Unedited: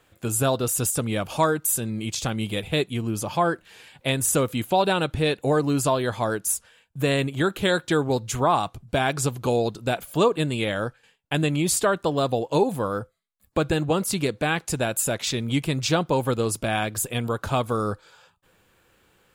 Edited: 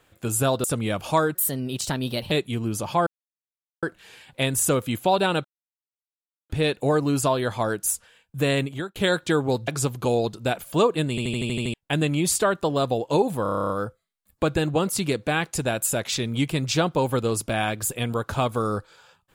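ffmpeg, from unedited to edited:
-filter_complex "[0:a]asplit=25[a][b][c][d][e][f][g][h][i][j][k][l][m][n][o][p][q][r][s][t][u][v][w][x][y];[a]atrim=end=0.642[z];[b]atrim=start=0.898:end=1.614[aa];[c]atrim=start=1.61:end=2.74,asetpts=PTS-STARTPTS,asetrate=51597,aresample=44100,atrim=end_sample=42592,asetpts=PTS-STARTPTS[ab];[d]atrim=start=2.736:end=3.49,asetpts=PTS-STARTPTS,afade=t=out:st=0.75:d=0.004:c=hsin,apad=pad_dur=0.76[ac];[e]atrim=start=3.49:end=5.11,asetpts=PTS-STARTPTS,afade=t=in:d=0.004:c=hsin,afade=t=out:st=1.616:d=0.004:c=hsin,apad=pad_dur=1.05[ad];[f]atrim=start=5.11:end=7.57,asetpts=PTS-STARTPTS,afade=t=in:d=0.004:c=hsin,afade=t=out:st=2.11:d=0.35[ae];[g]atrim=start=7.57:end=8.292,asetpts=PTS-STARTPTS,afade=t=in:d=0.004:c=hsin[af];[h]atrim=start=9.088:end=10.592[ag];[i]atrim=start=10.508:end=10.592[ah];[j]atrim=start=10.508:end=10.592[ai];[k]atrim=start=10.508:end=10.592[aj];[l]atrim=start=10.508:end=10.592[ak];[m]atrim=start=10.508:end=10.592[al];[n]atrim=start=10.508:end=10.592[am];[o]atrim=start=10.508:end=10.592[an];[p]atrim=start=11.148:end=12.872[ao];[q]atrim=start=12.838:end=12.872[ap];[r]atrim=start=12.838:end=12.872[aq];[s]atrim=start=12.838:end=12.872[ar];[t]atrim=start=12.838:end=12.872[as];[u]atrim=start=12.838:end=12.872[at];[v]atrim=start=12.838:end=12.872[au];[w]atrim=start=12.838:end=12.872[av];[x]atrim=start=12.838:end=12.872[aw];[y]atrim=start=12.838[ax];[z][aa]acrossfade=d=0.004:c1=hsin:c2=hsin[ay];[ay][ab]acrossfade=d=0.004:c1=hsin:c2=hsin[az];[ac][ad][ae][af]concat=n=4:v=0:a=1[ba];[az][ba]acrossfade=d=0.004:c1=hsin:c2=hsin[bb];[bb][ag]acrossfade=d=0.004:c1=hsin:c2=hsin[bc];[bc][ah]acrossfade=d=0.004:c1=hsin:c2=hsin[bd];[bd][ai]acrossfade=d=0.004:c1=hsin:c2=hsin[be];[be][aj]acrossfade=d=0.004:c1=hsin:c2=hsin[bf];[bf][ak]acrossfade=d=0.004:c1=hsin:c2=hsin[bg];[bg][al]acrossfade=d=0.004:c1=hsin:c2=hsin[bh];[bh][am]acrossfade=d=0.004:c1=hsin:c2=hsin[bi];[bi][an]acrossfade=d=0.004:c1=hsin:c2=hsin[bj];[bj][ao]acrossfade=d=0.004:c1=hsin:c2=hsin[bk];[bk][ap]acrossfade=d=0.004:c1=hsin:c2=hsin[bl];[bl][aq]acrossfade=d=0.004:c1=hsin:c2=hsin[bm];[bm][ar]acrossfade=d=0.004:c1=hsin:c2=hsin[bn];[bn][as]acrossfade=d=0.004:c1=hsin:c2=hsin[bo];[bo][at]acrossfade=d=0.004:c1=hsin:c2=hsin[bp];[bp][au]acrossfade=d=0.004:c1=hsin:c2=hsin[bq];[bq][av]acrossfade=d=0.004:c1=hsin:c2=hsin[br];[br][aw]acrossfade=d=0.004:c1=hsin:c2=hsin[bs];[bs][ax]acrossfade=d=0.004:c1=hsin:c2=hsin"

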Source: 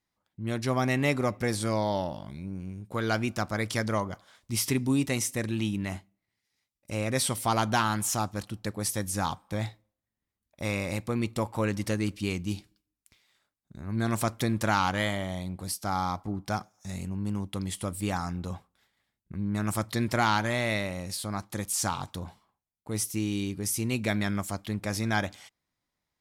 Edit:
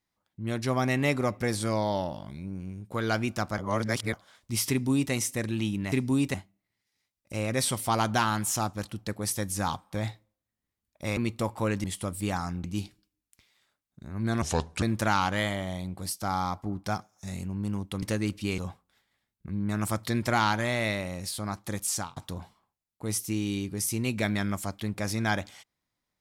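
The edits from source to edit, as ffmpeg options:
-filter_complex "[0:a]asplit=13[a][b][c][d][e][f][g][h][i][j][k][l][m];[a]atrim=end=3.582[n];[b]atrim=start=3.578:end=4.132,asetpts=PTS-STARTPTS,areverse[o];[c]atrim=start=4.128:end=5.922[p];[d]atrim=start=4.698:end=5.122[q];[e]atrim=start=5.918:end=10.752[r];[f]atrim=start=11.138:end=11.812[s];[g]atrim=start=17.638:end=18.442[t];[h]atrim=start=12.368:end=14.154[u];[i]atrim=start=14.15:end=14.44,asetpts=PTS-STARTPTS,asetrate=31752,aresample=44100,atrim=end_sample=17762,asetpts=PTS-STARTPTS[v];[j]atrim=start=14.436:end=17.642[w];[k]atrim=start=11.808:end=12.372[x];[l]atrim=start=18.438:end=22.02,asetpts=PTS-STARTPTS,afade=t=out:st=3.322:d=0.26[y];[m]atrim=start=22.02,asetpts=PTS-STARTPTS,afade=t=in:d=0.004:c=hsin[z];[n][o]acrossfade=d=0.004:c1=hsin:c2=hsin[aa];[aa][p]acrossfade=d=0.004:c1=hsin:c2=hsin[ab];[ab][q]acrossfade=d=0.004:c1=hsin:c2=hsin[ac];[ac][r]acrossfade=d=0.004:c1=hsin:c2=hsin[ad];[ad][s]acrossfade=d=0.004:c1=hsin:c2=hsin[ae];[ae][t]acrossfade=d=0.004:c1=hsin:c2=hsin[af];[af][u]acrossfade=d=0.004:c1=hsin:c2=hsin[ag];[ag][v]acrossfade=d=0.004:c1=hsin:c2=hsin[ah];[ah][w]acrossfade=d=0.004:c1=hsin:c2=hsin[ai];[ai][x]acrossfade=d=0.004:c1=hsin:c2=hsin[aj];[y][z]concat=n=2:v=0:a=1[ak];[aj][ak]acrossfade=d=0.004:c1=hsin:c2=hsin"

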